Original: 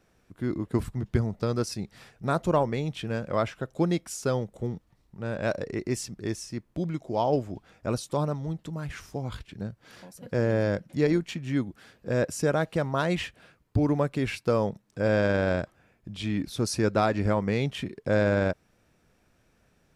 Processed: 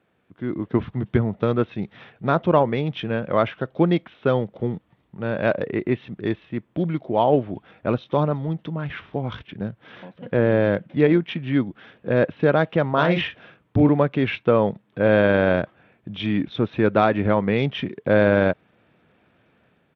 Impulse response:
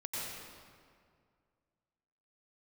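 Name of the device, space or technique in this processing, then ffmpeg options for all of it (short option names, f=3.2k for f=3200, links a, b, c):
Bluetooth headset: -filter_complex "[0:a]asettb=1/sr,asplit=3[a][b][c];[a]atrim=end=12.894[d];[b]atrim=start=12.89:end=13.89,asetpts=PTS-STARTPTS,afade=t=in:d=0.004:c=qsin,afade=t=out:st=0.996:d=0.004:c=qsin,asplit=2[e][f];[f]adelay=41,volume=-6dB[g];[e][g]amix=inputs=2:normalize=0,atrim=end_sample=44100[h];[c]atrim=start=13.886[i];[d][h]acrossfade=d=0.004:c1=hsin:c2=qsin[j];[j][i]acrossfade=d=0.004:c1=qsin:c2=hsin,highpass=120,dynaudnorm=f=240:g=5:m=7.5dB,aresample=8000,aresample=44100" -ar 32000 -c:a sbc -b:a 64k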